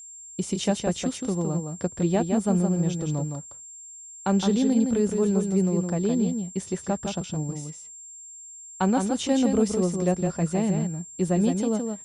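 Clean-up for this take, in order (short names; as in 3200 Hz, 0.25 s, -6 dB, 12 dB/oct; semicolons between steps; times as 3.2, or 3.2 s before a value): notch 7400 Hz, Q 30; inverse comb 0.164 s -5.5 dB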